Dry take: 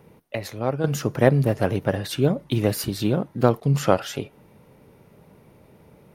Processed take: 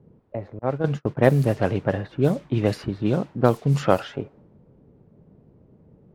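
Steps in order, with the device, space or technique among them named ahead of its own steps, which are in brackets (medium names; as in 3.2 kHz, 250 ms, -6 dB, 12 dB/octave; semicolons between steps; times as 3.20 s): cassette deck with a dynamic noise filter (white noise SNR 24 dB; level-controlled noise filter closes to 340 Hz, open at -14 dBFS); 0.59–1.17 s: gate -26 dBFS, range -34 dB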